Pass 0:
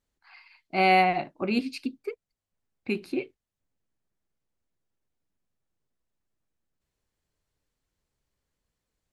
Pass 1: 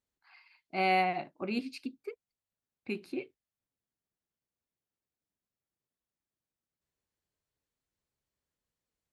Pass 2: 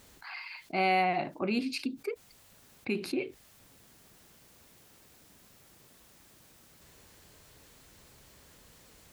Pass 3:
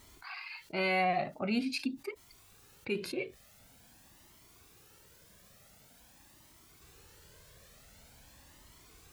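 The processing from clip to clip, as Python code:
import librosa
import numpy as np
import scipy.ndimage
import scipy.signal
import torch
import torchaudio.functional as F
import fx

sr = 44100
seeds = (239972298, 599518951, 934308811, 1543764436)

y1 = fx.highpass(x, sr, hz=81.0, slope=6)
y1 = y1 * librosa.db_to_amplitude(-7.0)
y2 = fx.env_flatten(y1, sr, amount_pct=50)
y3 = fx.comb_cascade(y2, sr, direction='rising', hz=0.46)
y3 = y3 * librosa.db_to_amplitude(3.5)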